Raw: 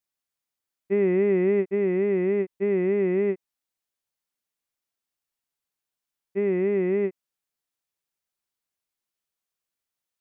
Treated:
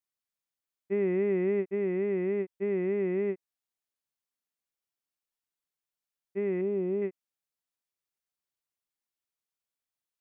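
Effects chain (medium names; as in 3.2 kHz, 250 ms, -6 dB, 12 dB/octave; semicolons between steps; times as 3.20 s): 6.61–7.02 s: peaking EQ 1.9 kHz -13 dB 1 oct; trim -6 dB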